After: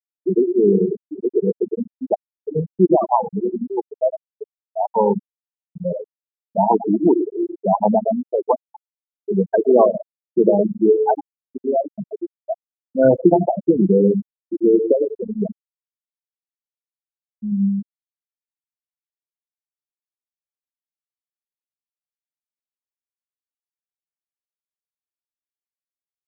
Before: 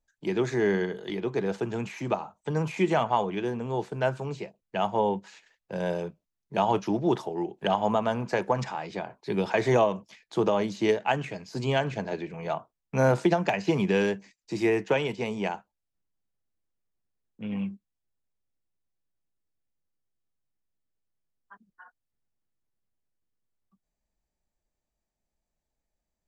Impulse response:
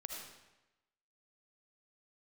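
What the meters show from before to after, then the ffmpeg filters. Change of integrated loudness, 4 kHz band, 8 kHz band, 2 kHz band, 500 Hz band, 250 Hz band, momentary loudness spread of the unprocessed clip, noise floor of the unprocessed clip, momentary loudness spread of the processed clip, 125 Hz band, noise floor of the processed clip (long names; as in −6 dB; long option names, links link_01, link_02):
+9.0 dB, below −40 dB, below −30 dB, below −10 dB, +9.5 dB, +10.0 dB, 11 LU, −85 dBFS, 14 LU, +3.5 dB, below −85 dBFS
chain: -filter_complex "[0:a]aecho=1:1:106|212|318:0.355|0.0745|0.0156,asplit=2[link_01][link_02];[1:a]atrim=start_sample=2205[link_03];[link_02][link_03]afir=irnorm=-1:irlink=0,volume=-4dB[link_04];[link_01][link_04]amix=inputs=2:normalize=0,acrusher=bits=9:mode=log:mix=0:aa=0.000001,lowshelf=frequency=140:width_type=q:width=1.5:gain=-11.5,afftfilt=real='re*gte(hypot(re,im),0.398)':imag='im*gte(hypot(re,im),0.398)':win_size=1024:overlap=0.75,volume=6.5dB"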